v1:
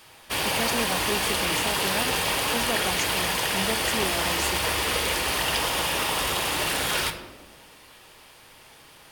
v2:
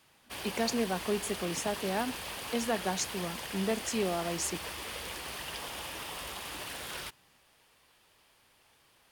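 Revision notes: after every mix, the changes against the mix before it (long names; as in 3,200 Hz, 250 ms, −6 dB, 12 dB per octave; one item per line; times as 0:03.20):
background −11.5 dB
reverb: off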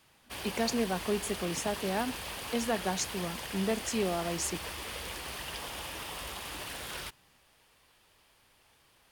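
master: add low-shelf EQ 79 Hz +7 dB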